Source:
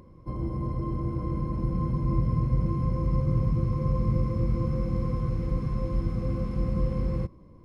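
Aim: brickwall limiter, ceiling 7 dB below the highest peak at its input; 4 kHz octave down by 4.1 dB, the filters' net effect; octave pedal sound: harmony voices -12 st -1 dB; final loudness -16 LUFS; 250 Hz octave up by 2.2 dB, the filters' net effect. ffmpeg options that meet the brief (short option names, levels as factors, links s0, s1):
-filter_complex "[0:a]equalizer=f=250:t=o:g=3.5,equalizer=f=4000:t=o:g=-6,alimiter=limit=0.1:level=0:latency=1,asplit=2[s0][s1];[s1]asetrate=22050,aresample=44100,atempo=2,volume=0.891[s2];[s0][s2]amix=inputs=2:normalize=0,volume=3.98"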